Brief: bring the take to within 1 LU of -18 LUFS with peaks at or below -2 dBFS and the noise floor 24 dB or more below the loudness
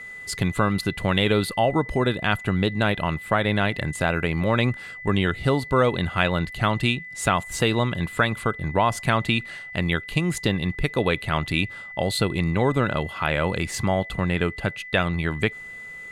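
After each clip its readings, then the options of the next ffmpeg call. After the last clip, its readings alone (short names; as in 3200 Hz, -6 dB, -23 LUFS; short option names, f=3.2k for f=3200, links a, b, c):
steady tone 2000 Hz; tone level -36 dBFS; loudness -24.0 LUFS; peak -3.5 dBFS; loudness target -18.0 LUFS
-> -af "bandreject=f=2k:w=30"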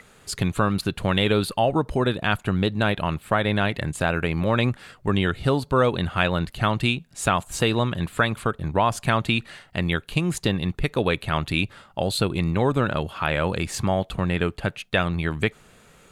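steady tone none; loudness -24.0 LUFS; peak -4.0 dBFS; loudness target -18.0 LUFS
-> -af "volume=6dB,alimiter=limit=-2dB:level=0:latency=1"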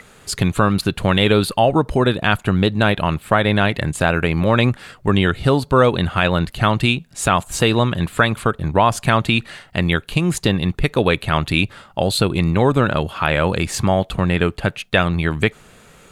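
loudness -18.0 LUFS; peak -2.0 dBFS; noise floor -48 dBFS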